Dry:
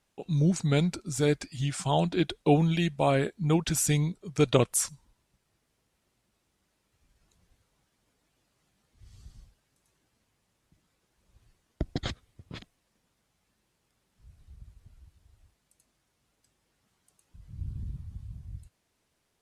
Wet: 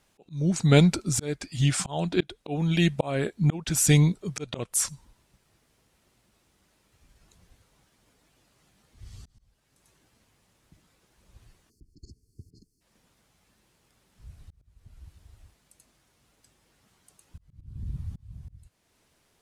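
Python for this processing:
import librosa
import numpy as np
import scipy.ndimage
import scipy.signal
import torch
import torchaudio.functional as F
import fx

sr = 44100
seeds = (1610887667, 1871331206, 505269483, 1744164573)

y = fx.auto_swell(x, sr, attack_ms=484.0)
y = fx.spec_erase(y, sr, start_s=11.7, length_s=1.11, low_hz=460.0, high_hz=4200.0)
y = y * librosa.db_to_amplitude(8.0)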